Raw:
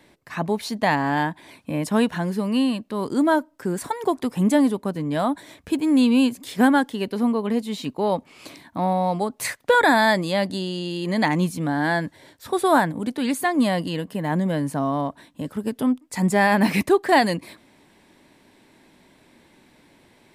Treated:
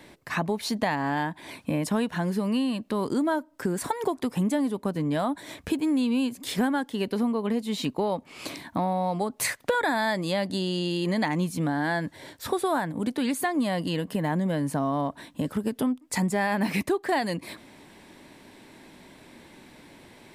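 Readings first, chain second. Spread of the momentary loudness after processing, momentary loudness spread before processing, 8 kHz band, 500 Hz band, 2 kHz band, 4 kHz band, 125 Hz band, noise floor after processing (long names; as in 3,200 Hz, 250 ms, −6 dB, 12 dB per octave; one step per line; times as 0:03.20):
6 LU, 11 LU, −1.5 dB, −5.5 dB, −6.5 dB, −3.5 dB, −3.0 dB, −55 dBFS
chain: downward compressor 4 to 1, threshold −30 dBFS, peak gain reduction 15 dB
level +5 dB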